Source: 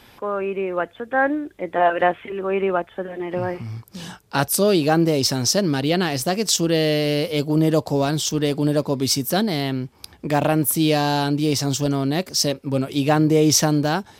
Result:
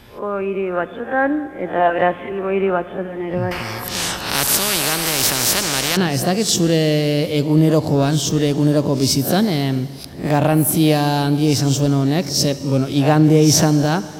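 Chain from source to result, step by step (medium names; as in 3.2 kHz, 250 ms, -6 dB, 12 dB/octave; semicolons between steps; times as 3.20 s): reverse spectral sustain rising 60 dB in 0.33 s; bass shelf 250 Hz +8.5 dB; Schroeder reverb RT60 2.6 s, combs from 29 ms, DRR 14 dB; 3.51–5.97 s: spectrum-flattening compressor 4:1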